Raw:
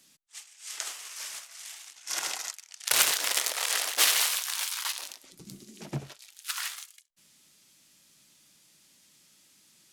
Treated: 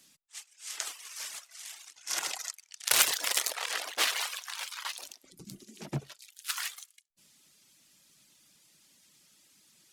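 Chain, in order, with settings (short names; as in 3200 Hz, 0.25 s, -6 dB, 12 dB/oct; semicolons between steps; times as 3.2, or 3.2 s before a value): reverb removal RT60 0.74 s; 3.55–4.93 LPF 3100 Hz 6 dB/oct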